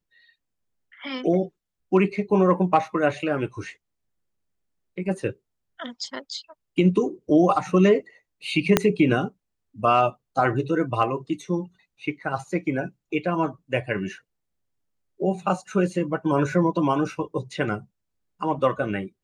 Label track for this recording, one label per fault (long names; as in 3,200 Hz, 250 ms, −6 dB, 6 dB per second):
8.770000	8.770000	click −1 dBFS